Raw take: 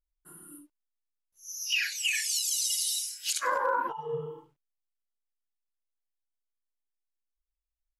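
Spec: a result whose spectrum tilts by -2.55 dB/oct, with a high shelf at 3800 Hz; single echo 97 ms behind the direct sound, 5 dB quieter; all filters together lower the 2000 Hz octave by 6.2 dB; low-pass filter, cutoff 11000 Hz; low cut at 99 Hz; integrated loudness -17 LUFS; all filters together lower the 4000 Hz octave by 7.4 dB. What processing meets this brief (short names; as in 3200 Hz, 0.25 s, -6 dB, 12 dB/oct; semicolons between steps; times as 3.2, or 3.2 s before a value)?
HPF 99 Hz; LPF 11000 Hz; bell 2000 Hz -5.5 dB; high shelf 3800 Hz -5 dB; bell 4000 Hz -5 dB; echo 97 ms -5 dB; gain +15.5 dB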